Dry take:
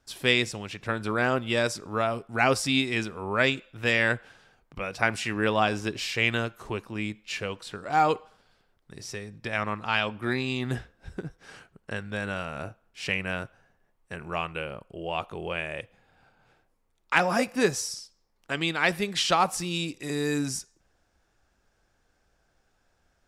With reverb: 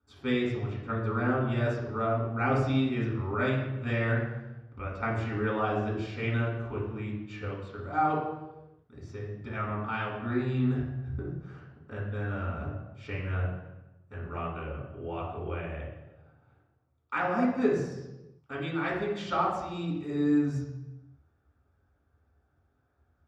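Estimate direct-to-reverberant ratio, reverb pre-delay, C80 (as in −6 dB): −6.0 dB, 3 ms, 5.0 dB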